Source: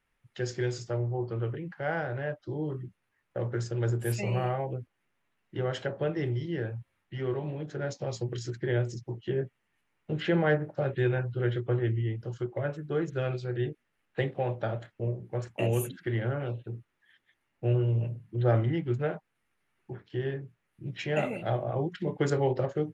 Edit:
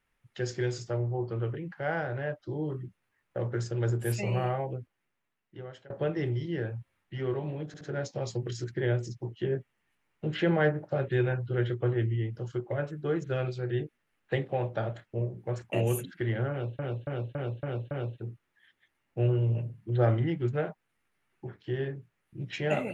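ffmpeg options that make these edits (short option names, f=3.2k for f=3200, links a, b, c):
-filter_complex "[0:a]asplit=9[a][b][c][d][e][f][g][h][i];[a]atrim=end=5.9,asetpts=PTS-STARTPTS,afade=t=out:st=4.56:d=1.34:silence=0.0749894[j];[b]atrim=start=5.9:end=7.742,asetpts=PTS-STARTPTS,afade=t=in:d=0.004:c=hsin:silence=0.0749894[k];[c]atrim=start=7.668:end=7.742[l];[d]atrim=start=7.668:end=16.652[m];[e]atrim=start=16.368:end=16.652[n];[f]atrim=start=16.368:end=16.652[o];[g]atrim=start=16.368:end=16.652[p];[h]atrim=start=16.368:end=16.652[q];[i]atrim=start=16.368[r];[j][k]concat=n=2:v=0:a=1[s];[s][l]acrossfade=d=0.004:c1=hsin:c2=hsin[t];[t][m]acrossfade=d=0.004:c1=hsin:c2=hsin[u];[u][n]acrossfade=d=0.004:c1=hsin:c2=hsin[v];[v][o]acrossfade=d=0.004:c1=hsin:c2=hsin[w];[w][p]acrossfade=d=0.004:c1=hsin:c2=hsin[x];[x][q]acrossfade=d=0.004:c1=hsin:c2=hsin[y];[y][r]acrossfade=d=0.004:c1=hsin:c2=hsin"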